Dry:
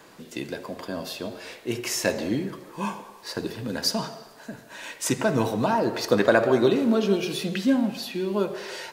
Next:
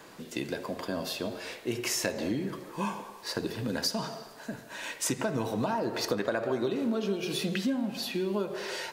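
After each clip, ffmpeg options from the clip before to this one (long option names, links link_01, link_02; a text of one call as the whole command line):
ffmpeg -i in.wav -af "acompressor=threshold=-27dB:ratio=5" out.wav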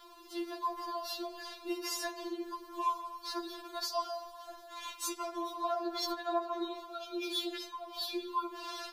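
ffmpeg -i in.wav -af "equalizer=frequency=250:width_type=o:width=1:gain=-9,equalizer=frequency=500:width_type=o:width=1:gain=-6,equalizer=frequency=1000:width_type=o:width=1:gain=9,equalizer=frequency=2000:width_type=o:width=1:gain=-11,equalizer=frequency=4000:width_type=o:width=1:gain=5,equalizer=frequency=8000:width_type=o:width=1:gain=-8,afftfilt=real='re*4*eq(mod(b,16),0)':imag='im*4*eq(mod(b,16),0)':win_size=2048:overlap=0.75" out.wav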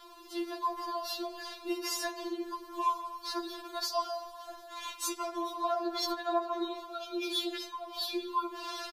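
ffmpeg -i in.wav -af "aresample=32000,aresample=44100,volume=2.5dB" out.wav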